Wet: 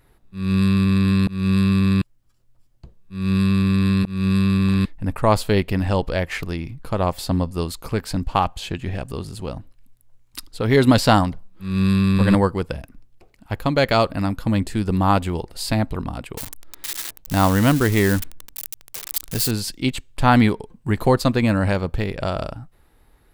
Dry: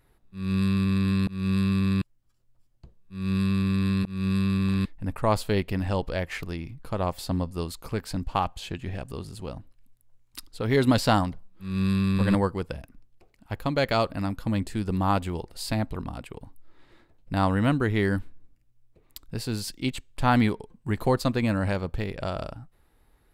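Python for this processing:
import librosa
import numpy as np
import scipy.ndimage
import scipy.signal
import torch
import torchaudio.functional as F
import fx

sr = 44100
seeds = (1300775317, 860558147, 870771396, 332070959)

y = fx.crossing_spikes(x, sr, level_db=-21.5, at=(16.37, 19.51))
y = y * librosa.db_to_amplitude(6.5)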